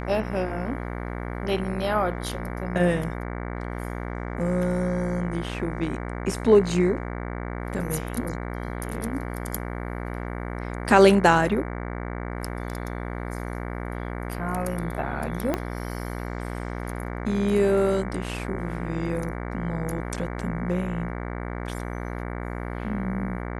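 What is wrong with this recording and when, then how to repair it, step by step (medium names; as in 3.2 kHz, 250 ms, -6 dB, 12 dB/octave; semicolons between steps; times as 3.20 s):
buzz 60 Hz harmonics 38 -32 dBFS
15.54 s: pop -11 dBFS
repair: de-click; de-hum 60 Hz, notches 38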